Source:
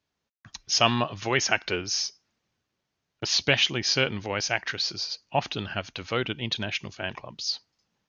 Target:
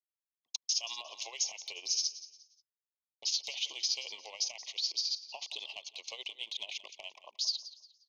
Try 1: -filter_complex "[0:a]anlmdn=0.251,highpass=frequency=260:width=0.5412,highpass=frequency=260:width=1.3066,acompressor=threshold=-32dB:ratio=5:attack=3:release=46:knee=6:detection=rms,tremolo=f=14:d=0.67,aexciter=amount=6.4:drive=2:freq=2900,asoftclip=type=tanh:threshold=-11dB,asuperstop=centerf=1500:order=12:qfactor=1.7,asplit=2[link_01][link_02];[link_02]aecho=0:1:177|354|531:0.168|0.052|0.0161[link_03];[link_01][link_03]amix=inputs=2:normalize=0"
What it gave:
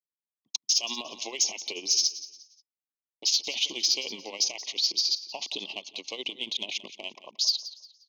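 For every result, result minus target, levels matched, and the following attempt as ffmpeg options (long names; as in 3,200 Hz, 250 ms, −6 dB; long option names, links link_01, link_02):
250 Hz band +17.0 dB; downward compressor: peak gain reduction −7.5 dB
-filter_complex "[0:a]anlmdn=0.251,highpass=frequency=560:width=0.5412,highpass=frequency=560:width=1.3066,acompressor=threshold=-32dB:ratio=5:attack=3:release=46:knee=6:detection=rms,tremolo=f=14:d=0.67,aexciter=amount=6.4:drive=2:freq=2900,asoftclip=type=tanh:threshold=-11dB,asuperstop=centerf=1500:order=12:qfactor=1.7,asplit=2[link_01][link_02];[link_02]aecho=0:1:177|354|531:0.168|0.052|0.0161[link_03];[link_01][link_03]amix=inputs=2:normalize=0"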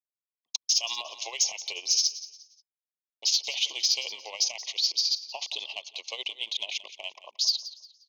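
downward compressor: peak gain reduction −8.5 dB
-filter_complex "[0:a]anlmdn=0.251,highpass=frequency=560:width=0.5412,highpass=frequency=560:width=1.3066,acompressor=threshold=-42.5dB:ratio=5:attack=3:release=46:knee=6:detection=rms,tremolo=f=14:d=0.67,aexciter=amount=6.4:drive=2:freq=2900,asoftclip=type=tanh:threshold=-11dB,asuperstop=centerf=1500:order=12:qfactor=1.7,asplit=2[link_01][link_02];[link_02]aecho=0:1:177|354|531:0.168|0.052|0.0161[link_03];[link_01][link_03]amix=inputs=2:normalize=0"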